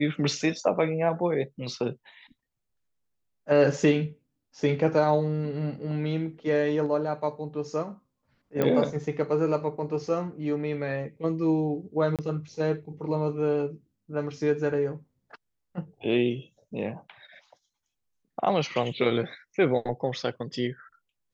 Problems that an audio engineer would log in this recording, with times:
8.62 pop -13 dBFS
12.16–12.19 gap 27 ms

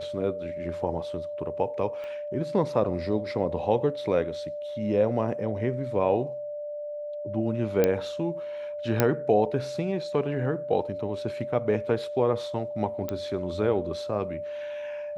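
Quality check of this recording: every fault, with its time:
tone 590 Hz -32 dBFS
2.04 pop -28 dBFS
7.84 pop -9 dBFS
9 pop -6 dBFS
13.09 pop -17 dBFS

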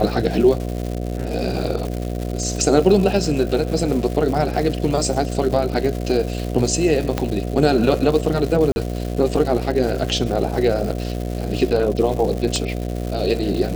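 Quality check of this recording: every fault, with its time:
buzz 60 Hz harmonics 12 -25 dBFS
crackle 340/s -26 dBFS
7.18 pop -6 dBFS
8.72–8.76 gap 41 ms
12.56 pop -10 dBFS

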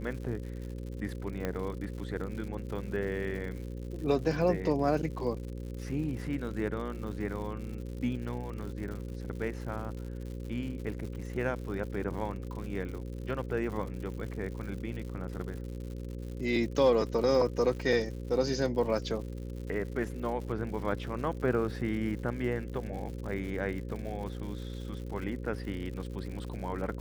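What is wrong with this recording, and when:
buzz 60 Hz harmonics 9 -39 dBFS
crackle 140/s -40 dBFS
1.45 pop -19 dBFS

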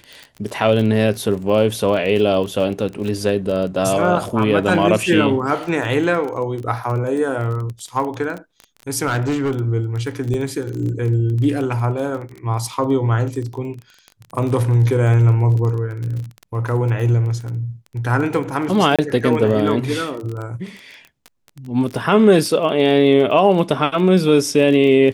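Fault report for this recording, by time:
crackle 23/s -25 dBFS
9.06–9.52 clipped -16 dBFS
10.34 gap 2 ms
18.96–18.99 gap 26 ms

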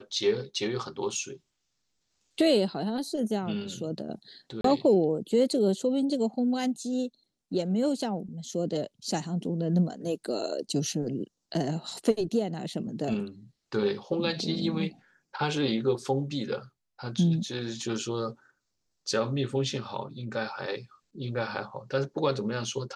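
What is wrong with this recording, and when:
4.61–4.64 gap 33 ms

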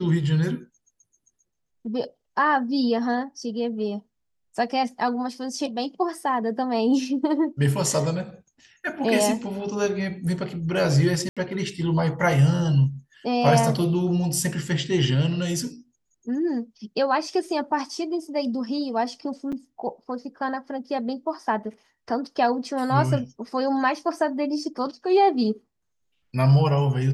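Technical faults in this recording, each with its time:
11.29–11.37 gap 76 ms
19.52–19.53 gap 6.1 ms

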